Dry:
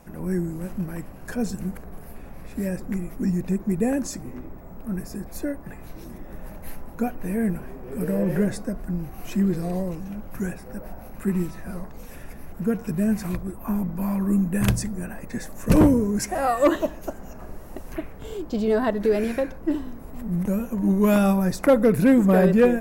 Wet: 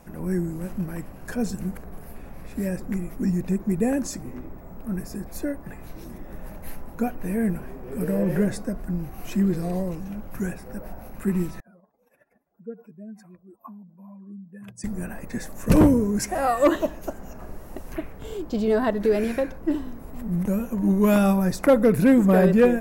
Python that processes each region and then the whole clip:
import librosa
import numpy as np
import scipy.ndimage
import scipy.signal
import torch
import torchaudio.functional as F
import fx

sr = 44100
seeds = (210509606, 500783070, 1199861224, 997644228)

y = fx.chain(x, sr, fx.spec_expand(power=2.0),
    fx.highpass(hz=610.0, slope=12), at=(11.6, 14.84))